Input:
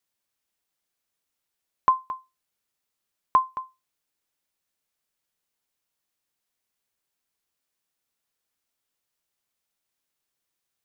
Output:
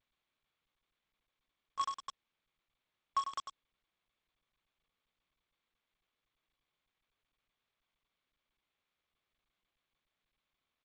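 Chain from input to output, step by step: median filter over 9 samples; Doppler pass-by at 4.8, 19 m/s, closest 5.1 m; limiter -34.5 dBFS, peak gain reduction 9 dB; phaser 1.1 Hz, delay 2.7 ms, feedback 36%; notches 50/100/150/200/250/300/350/400/450/500 Hz; bit-crush 8-bit; careless resampling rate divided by 4×, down none, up zero stuff; echo 98 ms -3.5 dB; tremolo saw down 3.9 Hz, depth 85%; gain +10 dB; G.722 64 kbps 16000 Hz

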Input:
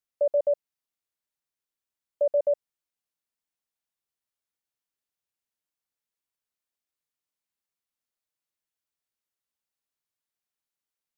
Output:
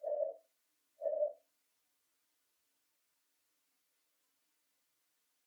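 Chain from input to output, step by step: time blur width 0.143 s; speed mistake 24 fps film run at 25 fps; HPF 280 Hz 6 dB/oct; compressor 10:1, threshold -42 dBFS, peak gain reduction 15.5 dB; chorus voices 6, 0.25 Hz, delay 13 ms, depth 2.7 ms; notch 840 Hz, Q 12; FDN reverb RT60 0.49 s, low-frequency decay 1.45×, high-frequency decay 0.45×, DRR 2.5 dB; dynamic EQ 720 Hz, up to -4 dB, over -59 dBFS, Q 2.6; plain phase-vocoder stretch 0.51×; gain +17 dB

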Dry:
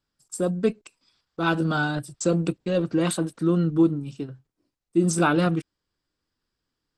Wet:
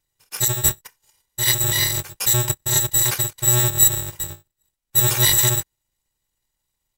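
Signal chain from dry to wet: FFT order left unsorted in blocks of 128 samples; pitch shift -6 st; gain +5 dB

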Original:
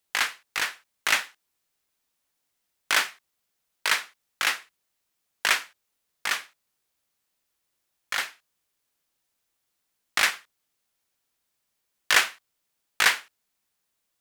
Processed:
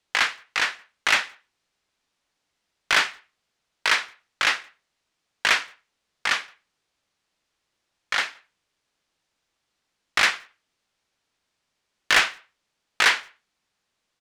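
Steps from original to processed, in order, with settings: LPF 5600 Hz 12 dB/oct; soft clip -15.5 dBFS, distortion -13 dB; speakerphone echo 0.17 s, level -28 dB; gain +5.5 dB

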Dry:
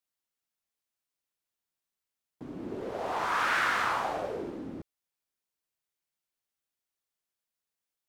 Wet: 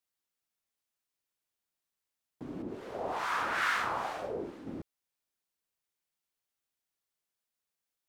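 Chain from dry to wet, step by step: 2.62–4.67 harmonic tremolo 2.3 Hz, depth 70%, crossover 1000 Hz

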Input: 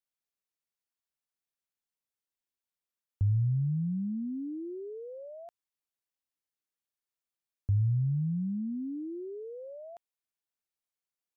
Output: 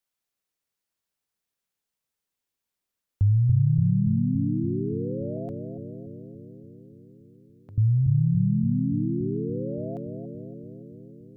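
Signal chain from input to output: 5.37–7.78 HPF 430 Hz; on a send: analogue delay 0.285 s, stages 1024, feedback 72%, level -4.5 dB; on the sum: gain +6.5 dB

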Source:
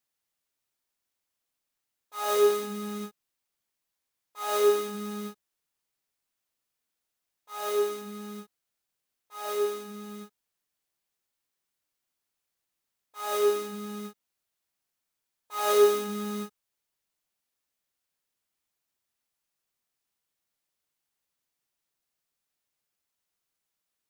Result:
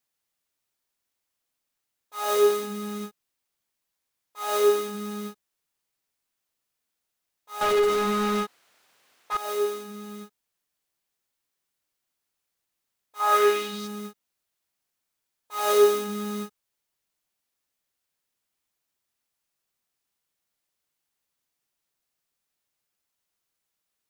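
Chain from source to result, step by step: 7.61–9.37 overdrive pedal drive 34 dB, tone 1800 Hz, clips at -16.5 dBFS; 13.19–13.86 bell 930 Hz -> 5000 Hz +12.5 dB 1.3 oct; gain +2 dB

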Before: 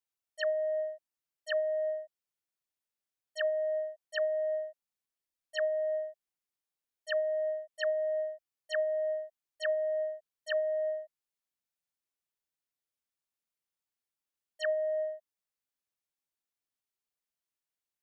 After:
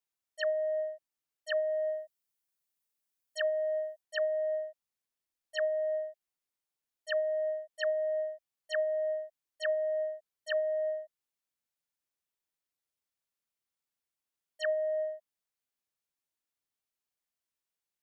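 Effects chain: 1.7–4.01 high shelf 7100 Hz +9 dB

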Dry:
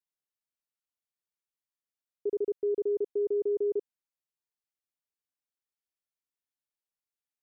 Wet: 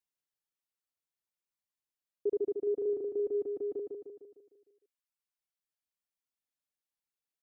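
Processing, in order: reverb removal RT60 1.9 s; on a send: feedback echo 0.152 s, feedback 51%, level -4.5 dB

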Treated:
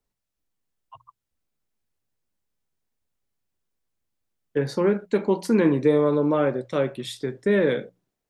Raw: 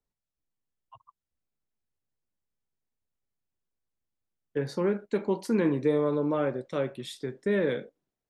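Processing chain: notches 60/120/180 Hz; gain +6 dB

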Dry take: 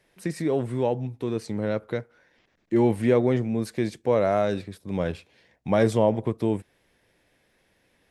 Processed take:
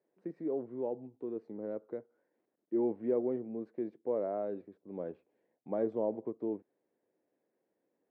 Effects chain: ladder band-pass 420 Hz, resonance 25%

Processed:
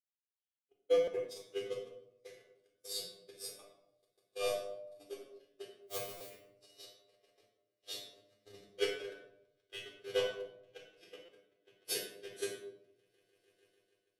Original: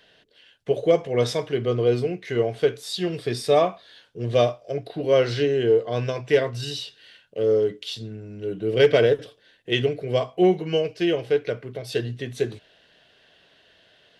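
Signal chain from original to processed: RIAA curve recording; on a send: swelling echo 0.148 s, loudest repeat 8, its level -17 dB; on the sum: soft clip -13 dBFS, distortion -18 dB; compressor 10:1, threshold -28 dBFS, peak gain reduction 11.5 dB; 5.81–6.29 requantised 6-bit, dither triangular; high shelf 8600 Hz +5 dB; resonator 100 Hz, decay 0.52 s, harmonics all, mix 100%; vocal rider within 4 dB 2 s; gate -39 dBFS, range -57 dB; shoebox room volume 1900 m³, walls furnished, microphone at 3.9 m; stuck buffer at 1.04/6.17/11.25, samples 256, times 5; gain +10 dB

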